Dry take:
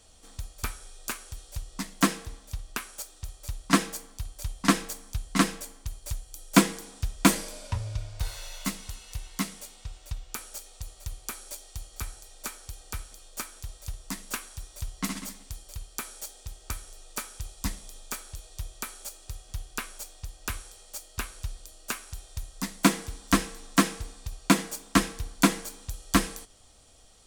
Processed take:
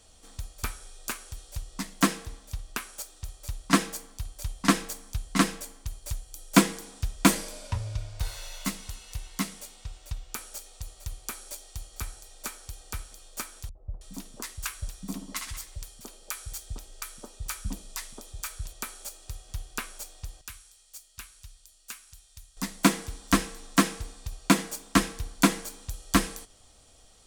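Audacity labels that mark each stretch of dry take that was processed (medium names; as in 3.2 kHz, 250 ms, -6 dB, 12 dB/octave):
13.690000	18.730000	three bands offset in time lows, mids, highs 60/320 ms, splits 170/810 Hz
20.410000	22.570000	amplifier tone stack bass-middle-treble 5-5-5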